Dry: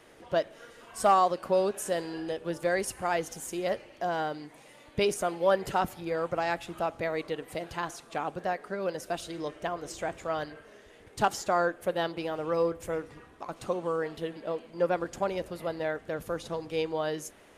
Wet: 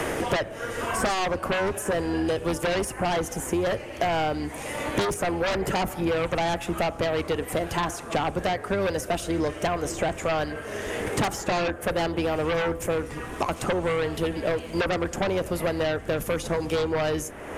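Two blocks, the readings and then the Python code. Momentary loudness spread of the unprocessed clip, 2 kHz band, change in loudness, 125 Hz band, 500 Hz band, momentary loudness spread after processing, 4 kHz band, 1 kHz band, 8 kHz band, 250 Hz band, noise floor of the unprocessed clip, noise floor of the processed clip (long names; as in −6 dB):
10 LU, +7.0 dB, +4.0 dB, +10.5 dB, +4.0 dB, 3 LU, +8.0 dB, +2.0 dB, +6.5 dB, +8.0 dB, −55 dBFS, −38 dBFS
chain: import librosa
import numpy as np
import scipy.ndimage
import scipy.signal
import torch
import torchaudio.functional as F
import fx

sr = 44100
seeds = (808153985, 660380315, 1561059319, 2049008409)

p1 = fx.octave_divider(x, sr, octaves=2, level_db=-5.0)
p2 = fx.peak_eq(p1, sr, hz=4100.0, db=-8.5, octaves=0.83)
p3 = fx.fold_sine(p2, sr, drive_db=16, ceiling_db=-12.0)
p4 = p2 + (p3 * librosa.db_to_amplitude(-6.5))
p5 = fx.band_squash(p4, sr, depth_pct=100)
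y = p5 * librosa.db_to_amplitude(-5.5)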